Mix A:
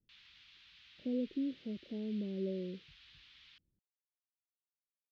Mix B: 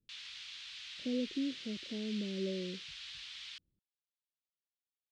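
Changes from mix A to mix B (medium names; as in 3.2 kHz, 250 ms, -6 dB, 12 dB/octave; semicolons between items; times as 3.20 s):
background +9.0 dB; master: remove distance through air 190 m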